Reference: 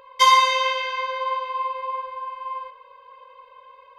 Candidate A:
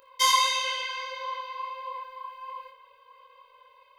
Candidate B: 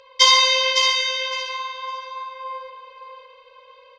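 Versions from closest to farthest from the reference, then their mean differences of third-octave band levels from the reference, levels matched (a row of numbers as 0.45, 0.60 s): A, B; 2.0, 3.0 dB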